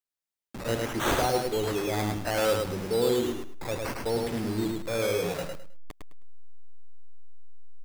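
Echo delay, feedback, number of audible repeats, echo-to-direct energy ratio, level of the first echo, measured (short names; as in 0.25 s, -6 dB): 0.105 s, 23%, 3, -3.5 dB, -3.5 dB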